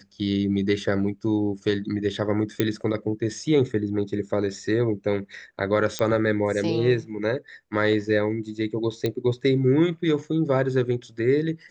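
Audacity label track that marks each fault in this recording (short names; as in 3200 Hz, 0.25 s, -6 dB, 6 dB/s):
2.600000	2.600000	pop -8 dBFS
5.990000	5.990000	pop -11 dBFS
9.060000	9.060000	pop -13 dBFS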